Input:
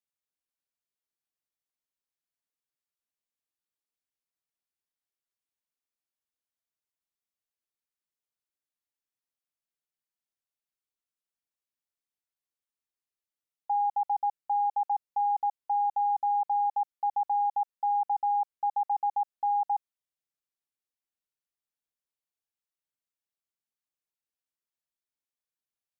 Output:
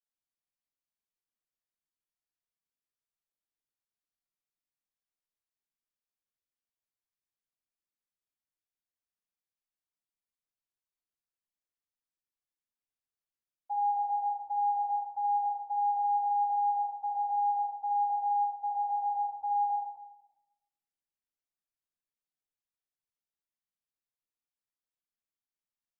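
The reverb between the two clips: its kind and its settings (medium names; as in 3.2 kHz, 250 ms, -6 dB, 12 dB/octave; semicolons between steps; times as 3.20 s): simulated room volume 450 m³, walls mixed, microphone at 7.5 m; trim -21 dB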